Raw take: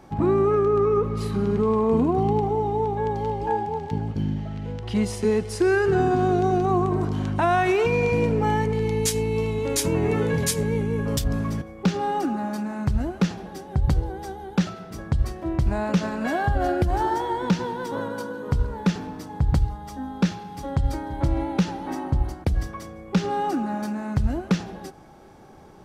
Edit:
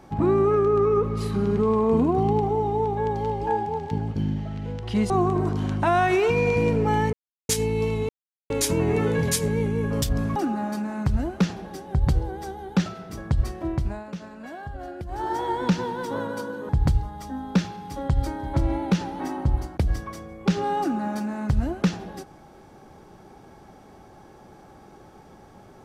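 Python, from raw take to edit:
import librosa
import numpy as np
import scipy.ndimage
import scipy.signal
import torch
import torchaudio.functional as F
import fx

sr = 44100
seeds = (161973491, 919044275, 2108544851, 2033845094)

y = fx.edit(x, sr, fx.cut(start_s=5.1, length_s=1.56),
    fx.silence(start_s=8.69, length_s=0.36),
    fx.insert_silence(at_s=9.65, length_s=0.41),
    fx.cut(start_s=11.51, length_s=0.66),
    fx.fade_down_up(start_s=15.45, length_s=1.83, db=-13.5, fade_s=0.4),
    fx.cut(start_s=18.5, length_s=0.86), tone=tone)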